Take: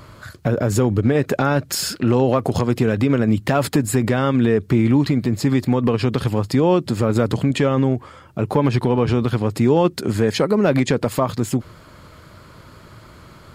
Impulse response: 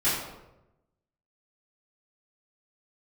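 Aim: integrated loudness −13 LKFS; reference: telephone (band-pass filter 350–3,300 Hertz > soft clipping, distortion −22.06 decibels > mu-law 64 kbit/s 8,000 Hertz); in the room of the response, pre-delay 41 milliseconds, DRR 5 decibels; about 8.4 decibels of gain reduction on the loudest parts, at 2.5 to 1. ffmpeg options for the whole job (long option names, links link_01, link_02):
-filter_complex "[0:a]acompressor=threshold=-25dB:ratio=2.5,asplit=2[link_01][link_02];[1:a]atrim=start_sample=2205,adelay=41[link_03];[link_02][link_03]afir=irnorm=-1:irlink=0,volume=-17.5dB[link_04];[link_01][link_04]amix=inputs=2:normalize=0,highpass=350,lowpass=3300,asoftclip=threshold=-17.5dB,volume=17.5dB" -ar 8000 -c:a pcm_mulaw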